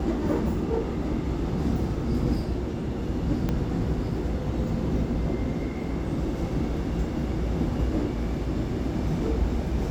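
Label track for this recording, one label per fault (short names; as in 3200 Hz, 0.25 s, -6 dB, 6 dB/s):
3.490000	3.490000	pop -15 dBFS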